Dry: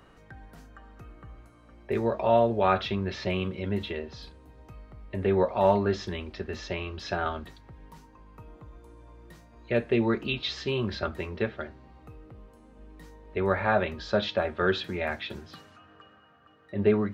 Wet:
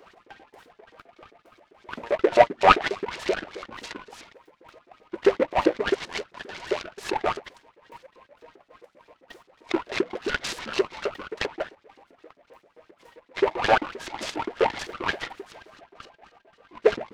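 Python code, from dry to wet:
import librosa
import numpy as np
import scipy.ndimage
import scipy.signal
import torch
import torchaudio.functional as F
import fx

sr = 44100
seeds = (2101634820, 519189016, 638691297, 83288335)

y = fx.pitch_trill(x, sr, semitones=-10.5, every_ms=145)
y = fx.filter_lfo_highpass(y, sr, shape='saw_up', hz=7.6, low_hz=320.0, high_hz=3100.0, q=7.0)
y = fx.noise_mod_delay(y, sr, seeds[0], noise_hz=1200.0, depth_ms=0.065)
y = F.gain(torch.from_numpy(y), -1.0).numpy()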